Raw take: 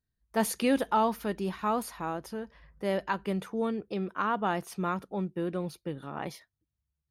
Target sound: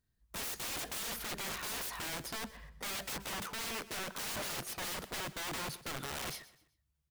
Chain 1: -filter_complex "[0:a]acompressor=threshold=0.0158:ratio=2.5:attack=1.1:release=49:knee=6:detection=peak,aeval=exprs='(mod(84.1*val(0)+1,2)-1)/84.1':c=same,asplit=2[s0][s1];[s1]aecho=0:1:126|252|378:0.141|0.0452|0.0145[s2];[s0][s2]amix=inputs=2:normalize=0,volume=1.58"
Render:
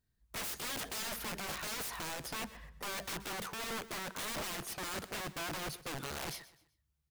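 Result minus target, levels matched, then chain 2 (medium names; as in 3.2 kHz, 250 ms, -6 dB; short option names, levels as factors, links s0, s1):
compression: peak gain reduction +5 dB
-filter_complex "[0:a]acompressor=threshold=0.0422:ratio=2.5:attack=1.1:release=49:knee=6:detection=peak,aeval=exprs='(mod(84.1*val(0)+1,2)-1)/84.1':c=same,asplit=2[s0][s1];[s1]aecho=0:1:126|252|378:0.141|0.0452|0.0145[s2];[s0][s2]amix=inputs=2:normalize=0,volume=1.58"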